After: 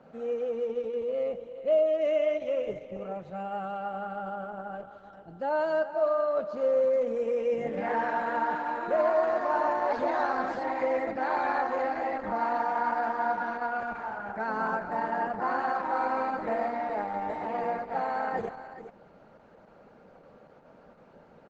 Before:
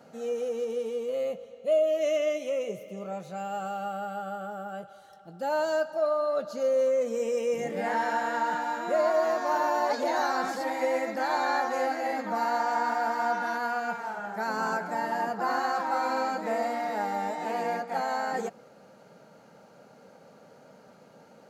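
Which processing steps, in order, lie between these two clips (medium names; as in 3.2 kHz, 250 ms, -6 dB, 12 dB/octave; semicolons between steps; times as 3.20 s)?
low-pass 2.5 kHz 12 dB/octave; on a send: delay 412 ms -12 dB; on the sum: Opus 12 kbps 48 kHz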